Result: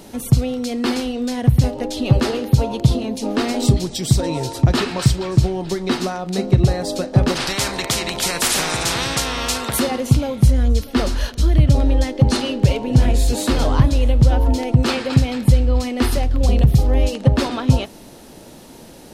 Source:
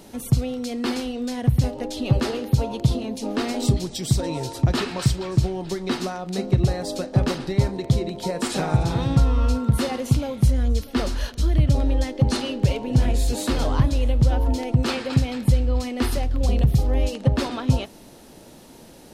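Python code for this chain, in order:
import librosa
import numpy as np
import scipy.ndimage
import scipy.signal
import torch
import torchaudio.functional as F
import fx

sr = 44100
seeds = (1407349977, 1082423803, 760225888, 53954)

y = fx.spectral_comp(x, sr, ratio=4.0, at=(7.35, 9.78), fade=0.02)
y = F.gain(torch.from_numpy(y), 5.0).numpy()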